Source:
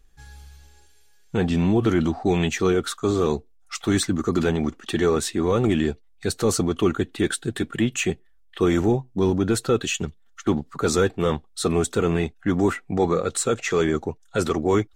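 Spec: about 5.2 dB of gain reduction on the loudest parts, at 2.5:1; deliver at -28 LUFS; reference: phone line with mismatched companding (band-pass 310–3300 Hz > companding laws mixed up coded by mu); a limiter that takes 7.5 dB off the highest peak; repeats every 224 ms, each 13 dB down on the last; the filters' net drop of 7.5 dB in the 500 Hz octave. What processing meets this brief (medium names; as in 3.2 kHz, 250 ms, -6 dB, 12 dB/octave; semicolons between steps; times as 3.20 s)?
peaking EQ 500 Hz -8.5 dB; compression 2.5:1, threshold -26 dBFS; peak limiter -21 dBFS; band-pass 310–3300 Hz; feedback delay 224 ms, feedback 22%, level -13 dB; companding laws mixed up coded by mu; trim +6.5 dB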